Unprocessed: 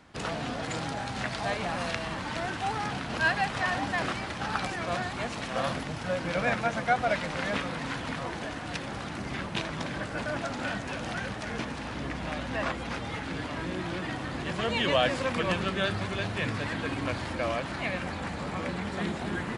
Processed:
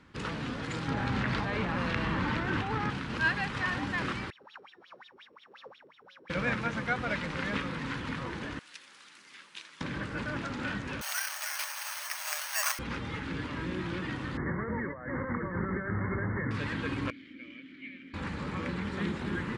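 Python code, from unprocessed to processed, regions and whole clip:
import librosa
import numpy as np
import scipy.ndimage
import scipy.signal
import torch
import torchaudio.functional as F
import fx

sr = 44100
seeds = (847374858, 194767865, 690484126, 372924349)

y = fx.chain(x, sr, fx.lowpass(hz=2400.0, slope=6),
    fx.env_flatten(amount_pct=100), at=(0.88, 2.9))
y = fx.chain(y, sr, fx.sample_sort(block=8),
    fx.wah_lfo(hz=5.6, low_hz=390.0, high_hz=3700.0, q=15.0), at=(4.3, 6.3))
y = fx.chain(y, sr, fx.highpass(hz=160.0, slope=12),
    fx.differentiator(), at=(8.59, 9.81))
y = fx.chain(y, sr, fx.brickwall_highpass(low_hz=570.0),
    fx.high_shelf(hz=2700.0, db=8.5),
    fx.resample_bad(factor=6, down='filtered', up='zero_stuff'), at=(11.01, 12.79))
y = fx.chain(y, sr, fx.brickwall_lowpass(high_hz=2200.0),
    fx.over_compress(threshold_db=-32.0, ratio=-1.0), at=(14.37, 16.51))
y = fx.chain(y, sr, fx.vowel_filter(vowel='i'),
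    fx.low_shelf(hz=280.0, db=-6.5), at=(17.1, 18.14))
y = fx.lowpass(y, sr, hz=3000.0, slope=6)
y = fx.peak_eq(y, sr, hz=690.0, db=-14.5, octaves=0.48)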